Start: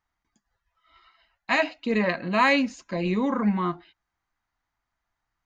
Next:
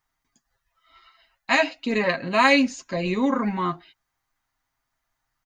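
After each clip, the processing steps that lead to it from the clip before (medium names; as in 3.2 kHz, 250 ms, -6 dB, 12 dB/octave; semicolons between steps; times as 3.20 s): treble shelf 5.4 kHz +9.5 dB; comb 7.5 ms, depth 47%; trim +1 dB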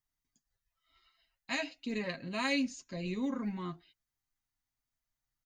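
peaking EQ 1 kHz -11.5 dB 2.7 oct; trim -8 dB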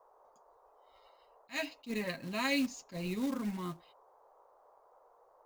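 short-mantissa float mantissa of 2-bit; band noise 430–1100 Hz -64 dBFS; attacks held to a fixed rise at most 330 dB/s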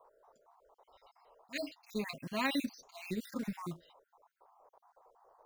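random holes in the spectrogram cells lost 46%; trim +1 dB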